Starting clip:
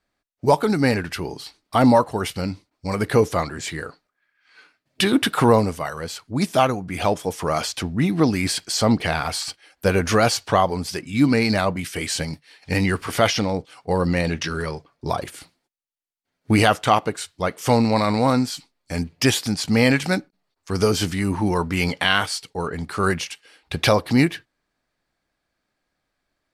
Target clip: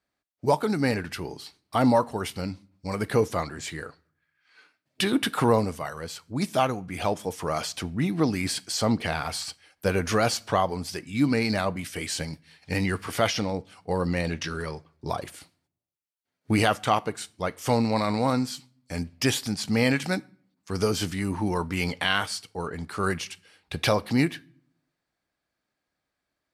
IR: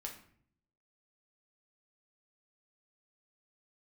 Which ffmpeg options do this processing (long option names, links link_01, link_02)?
-filter_complex "[0:a]highpass=49,asplit=2[link_01][link_02];[1:a]atrim=start_sample=2205,highshelf=frequency=5400:gain=8.5[link_03];[link_02][link_03]afir=irnorm=-1:irlink=0,volume=-15dB[link_04];[link_01][link_04]amix=inputs=2:normalize=0,volume=-6.5dB"